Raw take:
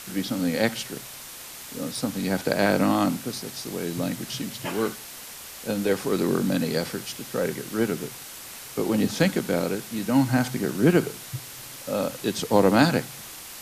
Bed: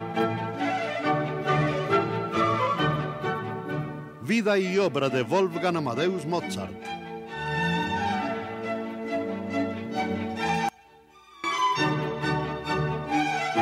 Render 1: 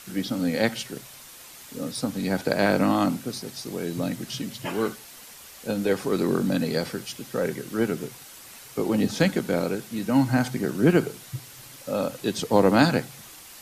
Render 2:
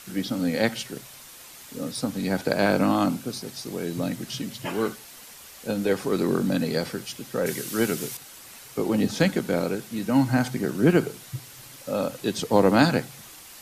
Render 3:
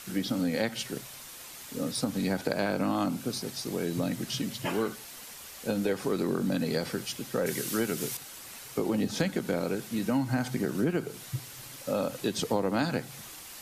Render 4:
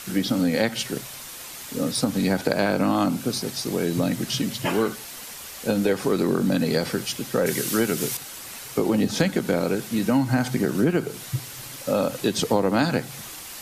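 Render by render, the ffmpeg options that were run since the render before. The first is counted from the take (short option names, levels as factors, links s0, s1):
-af "afftdn=nr=6:nf=-41"
-filter_complex "[0:a]asettb=1/sr,asplit=3[s0][s1][s2];[s0]atrim=end=2.534[s3];[s1]atrim=start=2.53:end=3.42,asetpts=PTS-STARTPTS,afade=t=in:d=0.004:c=qsin,afade=t=out:st=0.886:d=0.004:c=qsin,bandreject=f=1900:w=12[s4];[s2]atrim=start=3.416[s5];[s3][s4]acrossfade=d=0.004:c1=hsin:c2=qsin[s6];[s6][s5]acrossfade=d=0.004:c1=qsin:c2=hsin,asettb=1/sr,asplit=3[s7][s8][s9];[s7]atrim=end=7.464[s10];[s8]atrim=start=7.46:end=8.17,asetpts=PTS-STARTPTS,afade=t=in:d=0.004:c=qsin,afade=t=out:st=0.706:d=0.004:c=qsin,highshelf=f=2600:g=11.5[s11];[s9]atrim=start=8.166[s12];[s10][s11]acrossfade=d=0.004:c1=hsin:c2=qsin[s13];[s13][s12]acrossfade=d=0.004:c1=qsin:c2=hsin"
-af "acompressor=threshold=0.0562:ratio=5"
-af "volume=2.24"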